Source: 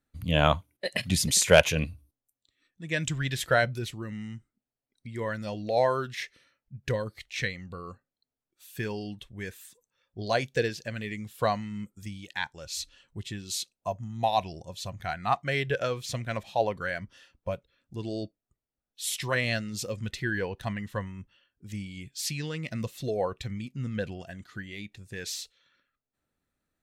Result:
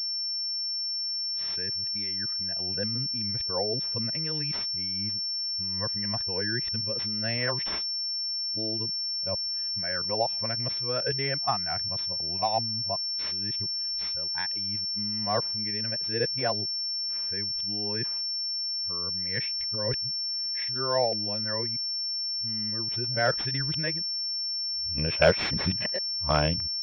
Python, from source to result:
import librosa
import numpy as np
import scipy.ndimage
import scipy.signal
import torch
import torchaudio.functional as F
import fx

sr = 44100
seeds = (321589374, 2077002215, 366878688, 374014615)

y = x[::-1].copy()
y = fx.pwm(y, sr, carrier_hz=5400.0)
y = F.gain(torch.from_numpy(y), -2.0).numpy()